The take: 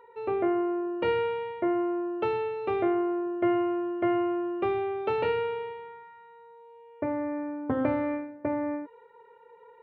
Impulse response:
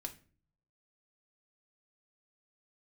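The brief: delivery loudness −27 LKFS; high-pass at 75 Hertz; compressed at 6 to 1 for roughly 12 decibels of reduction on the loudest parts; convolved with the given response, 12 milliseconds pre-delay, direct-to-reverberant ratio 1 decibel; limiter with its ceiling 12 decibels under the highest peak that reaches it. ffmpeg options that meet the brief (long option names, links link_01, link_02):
-filter_complex "[0:a]highpass=75,acompressor=threshold=-35dB:ratio=6,alimiter=level_in=9.5dB:limit=-24dB:level=0:latency=1,volume=-9.5dB,asplit=2[link_01][link_02];[1:a]atrim=start_sample=2205,adelay=12[link_03];[link_02][link_03]afir=irnorm=-1:irlink=0,volume=1.5dB[link_04];[link_01][link_04]amix=inputs=2:normalize=0,volume=12.5dB"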